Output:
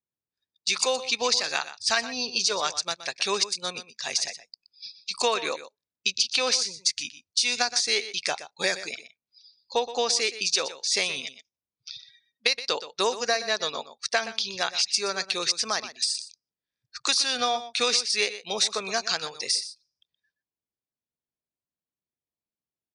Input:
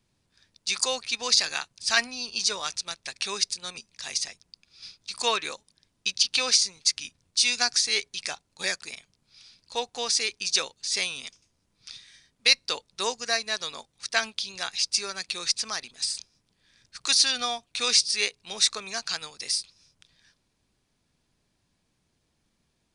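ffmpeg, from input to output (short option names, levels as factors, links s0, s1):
-af "lowpass=9300,afftdn=nr=33:nf=-47,highpass=49,equalizer=f=530:t=o:w=2:g=7,acompressor=threshold=0.0631:ratio=10,aecho=1:1:122:0.211,volume=1.58"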